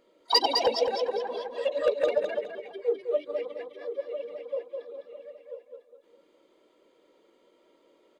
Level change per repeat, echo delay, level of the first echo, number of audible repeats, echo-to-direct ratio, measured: −10.5 dB, 207 ms, −5.0 dB, 3, −4.5 dB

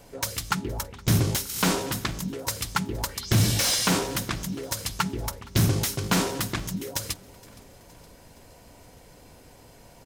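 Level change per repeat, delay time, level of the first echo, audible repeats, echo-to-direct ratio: −5.0 dB, 467 ms, −24.0 dB, 3, −22.5 dB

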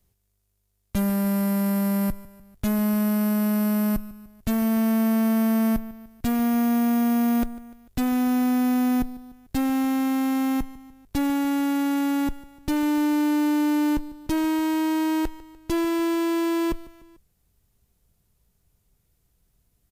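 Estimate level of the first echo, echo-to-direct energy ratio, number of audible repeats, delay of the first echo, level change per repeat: −18.5 dB, −17.0 dB, 3, 148 ms, −5.5 dB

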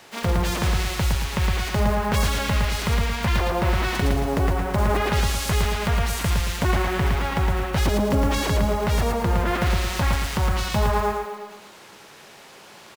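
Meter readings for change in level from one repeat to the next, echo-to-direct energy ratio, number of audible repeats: −8.0 dB, −2.5 dB, 3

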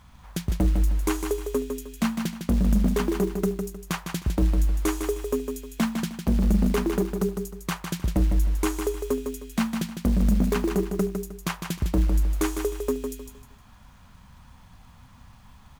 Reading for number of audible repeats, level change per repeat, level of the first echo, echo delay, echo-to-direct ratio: 3, −10.5 dB, −6.5 dB, 155 ms, −6.0 dB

